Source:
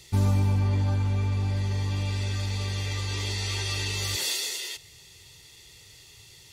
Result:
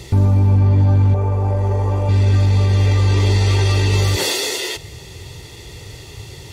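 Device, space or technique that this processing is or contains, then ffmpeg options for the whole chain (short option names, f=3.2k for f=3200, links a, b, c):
mastering chain: -filter_complex "[0:a]highpass=f=43:p=1,equalizer=f=170:t=o:w=1.2:g=-3.5,acompressor=threshold=-30dB:ratio=1.5,tiltshelf=f=1.3k:g=8.5,alimiter=level_in=23.5dB:limit=-1dB:release=50:level=0:latency=1,asettb=1/sr,asplit=3[a][b][c];[a]atrim=end=1.144[d];[b]atrim=start=1.14:end=2.09,asetpts=PTS-STARTPTS,afade=t=in:d=0.004:c=qsin,afade=t=out:st=0.946:d=0.004:c=qsin,equalizer=f=125:t=o:w=1:g=-7,equalizer=f=250:t=o:w=1:g=-8,equalizer=f=500:t=o:w=1:g=7,equalizer=f=1k:t=o:w=1:g=5,equalizer=f=2k:t=o:w=1:g=-4,equalizer=f=4k:t=o:w=1:g=-11[e];[c]atrim=start=2.086[f];[d][e]acrossfade=d=0.004:c1=hsin:c2=qsin[g];[g][f]acrossfade=d=0.004:c1=qsin:c2=hsin,volume=-7dB"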